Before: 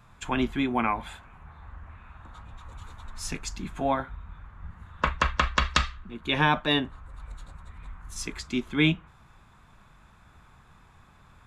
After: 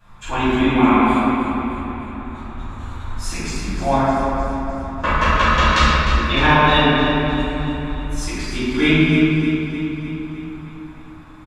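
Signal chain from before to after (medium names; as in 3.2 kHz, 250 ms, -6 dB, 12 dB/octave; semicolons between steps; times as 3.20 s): feedback delay 305 ms, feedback 57%, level -10 dB; simulated room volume 120 m³, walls hard, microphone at 2.5 m; trim -5.5 dB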